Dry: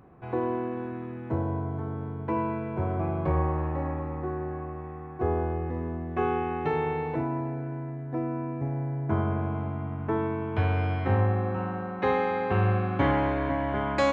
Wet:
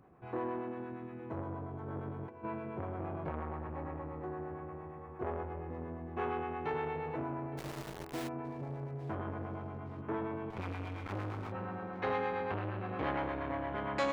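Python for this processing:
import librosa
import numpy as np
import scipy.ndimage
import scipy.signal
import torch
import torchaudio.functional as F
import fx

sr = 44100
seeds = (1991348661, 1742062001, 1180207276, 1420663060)

y = fx.lower_of_two(x, sr, delay_ms=0.89, at=(10.5, 11.52))
y = fx.low_shelf(y, sr, hz=200.0, db=-4.5)
y = fx.over_compress(y, sr, threshold_db=-35.0, ratio=-0.5, at=(1.87, 2.43), fade=0.02)
y = fx.harmonic_tremolo(y, sr, hz=8.6, depth_pct=50, crossover_hz=490.0)
y = fx.quant_dither(y, sr, seeds[0], bits=6, dither='none', at=(7.57, 8.27), fade=0.02)
y = fx.echo_filtered(y, sr, ms=865, feedback_pct=71, hz=3800.0, wet_db=-17.5)
y = fx.transformer_sat(y, sr, knee_hz=1100.0)
y = y * librosa.db_to_amplitude(-4.0)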